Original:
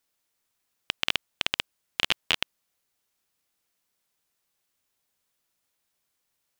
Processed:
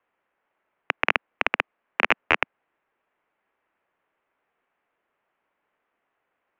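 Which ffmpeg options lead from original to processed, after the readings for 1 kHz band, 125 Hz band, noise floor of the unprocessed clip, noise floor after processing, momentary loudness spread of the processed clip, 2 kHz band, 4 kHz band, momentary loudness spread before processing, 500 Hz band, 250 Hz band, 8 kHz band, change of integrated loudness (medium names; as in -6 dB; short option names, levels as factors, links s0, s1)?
+11.5 dB, +0.5 dB, -78 dBFS, -79 dBFS, 7 LU, +8.0 dB, -7.0 dB, 9 LU, +11.0 dB, +7.5 dB, under -10 dB, +4.0 dB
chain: -filter_complex "[0:a]highpass=f=180:t=q:w=0.5412,highpass=f=180:t=q:w=1.307,lowpass=f=3200:t=q:w=0.5176,lowpass=f=3200:t=q:w=0.7071,lowpass=f=3200:t=q:w=1.932,afreqshift=-380,acrossover=split=280 2100:gain=0.141 1 0.2[s0][s1][s2];[s0][s1][s2]amix=inputs=3:normalize=0,acontrast=42,volume=2"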